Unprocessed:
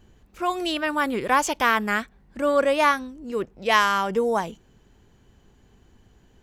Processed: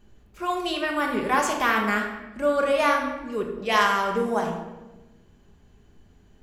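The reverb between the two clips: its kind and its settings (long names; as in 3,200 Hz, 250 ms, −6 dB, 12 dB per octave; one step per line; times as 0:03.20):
rectangular room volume 590 cubic metres, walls mixed, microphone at 1.3 metres
level −4 dB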